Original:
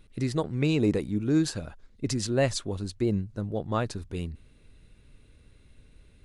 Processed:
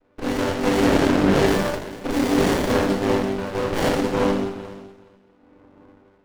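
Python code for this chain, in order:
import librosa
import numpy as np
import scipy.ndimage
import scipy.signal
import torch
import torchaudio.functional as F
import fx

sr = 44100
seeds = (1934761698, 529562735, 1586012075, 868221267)

y = fx.chord_vocoder(x, sr, chord='major triad', root=55)
y = fx.env_lowpass(y, sr, base_hz=790.0, full_db=-23.5)
y = scipy.signal.sosfilt(scipy.signal.butter(2, 350.0, 'highpass', fs=sr, output='sos'), y)
y = fx.low_shelf(y, sr, hz=480.0, db=9.5)
y = fx.leveller(y, sr, passes=1)
y = fx.filter_lfo_highpass(y, sr, shape='sine', hz=0.66, low_hz=590.0, high_hz=1600.0, q=0.78)
y = fx.fold_sine(y, sr, drive_db=19, ceiling_db=-18.0)
y = fx.echo_feedback(y, sr, ms=423, feedback_pct=16, wet_db=-17.5)
y = fx.rev_schroeder(y, sr, rt60_s=1.0, comb_ms=28, drr_db=-5.5)
y = fx.running_max(y, sr, window=33)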